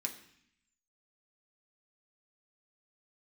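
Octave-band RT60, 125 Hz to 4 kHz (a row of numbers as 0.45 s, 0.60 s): 0.95 s, 0.95 s, 0.60 s, 0.70 s, 0.90 s, 0.85 s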